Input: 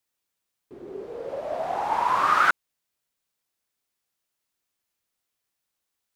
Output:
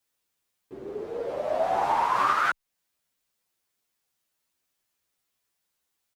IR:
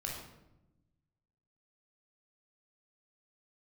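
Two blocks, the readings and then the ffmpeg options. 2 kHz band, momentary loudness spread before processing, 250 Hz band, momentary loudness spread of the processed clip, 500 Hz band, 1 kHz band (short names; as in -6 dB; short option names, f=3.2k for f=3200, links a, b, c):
-4.0 dB, 18 LU, +0.5 dB, 14 LU, +2.5 dB, -1.5 dB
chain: -filter_complex "[0:a]alimiter=limit=-16.5dB:level=0:latency=1:release=315,asplit=2[a][b];[b]adelay=9.3,afreqshift=2[c];[a][c]amix=inputs=2:normalize=1,volume=5.5dB"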